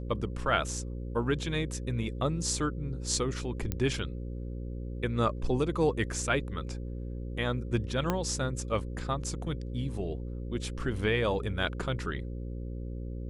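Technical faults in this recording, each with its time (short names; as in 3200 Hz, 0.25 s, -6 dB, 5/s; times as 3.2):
buzz 60 Hz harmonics 9 -37 dBFS
3.72 pop -16 dBFS
8.1 pop -14 dBFS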